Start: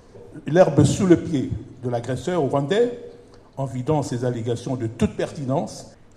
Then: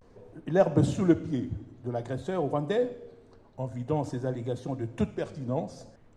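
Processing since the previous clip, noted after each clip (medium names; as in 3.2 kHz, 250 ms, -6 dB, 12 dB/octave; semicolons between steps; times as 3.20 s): treble shelf 4.3 kHz -10 dB; vibrato 0.5 Hz 80 cents; trim -7.5 dB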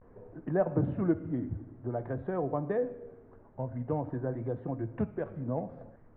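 inverse Chebyshev low-pass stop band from 5.9 kHz, stop band 60 dB; compression 1.5:1, threshold -33 dBFS, peak gain reduction 6.5 dB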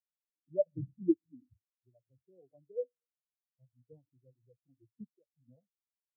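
spectral contrast expander 4:1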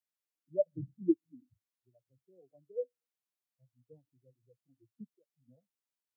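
high-pass 120 Hz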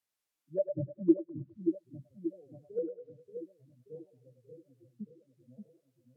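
low-pass that closes with the level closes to 420 Hz, closed at -34.5 dBFS; on a send: two-band feedback delay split 490 Hz, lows 581 ms, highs 102 ms, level -6 dB; on the sum: trim +5 dB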